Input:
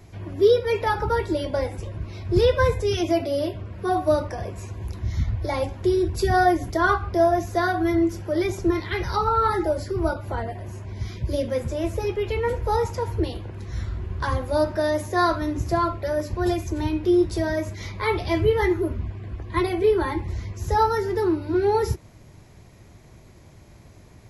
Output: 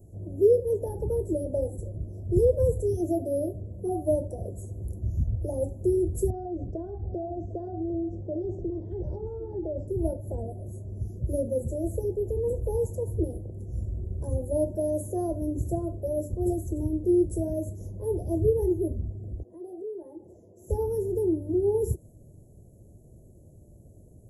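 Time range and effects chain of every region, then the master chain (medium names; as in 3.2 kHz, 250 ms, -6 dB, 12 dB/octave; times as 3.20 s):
6.30–9.88 s: low-pass 4 kHz 24 dB/octave + compression 10:1, threshold -23 dBFS + delay 752 ms -14.5 dB
19.43–20.70 s: high-pass 400 Hz + compression 3:1, threshold -34 dBFS + treble shelf 4.9 kHz -11 dB
whole clip: elliptic band-stop 580–8100 Hz, stop band 40 dB; dynamic bell 9.5 kHz, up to +4 dB, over -60 dBFS, Q 0.96; trim -2.5 dB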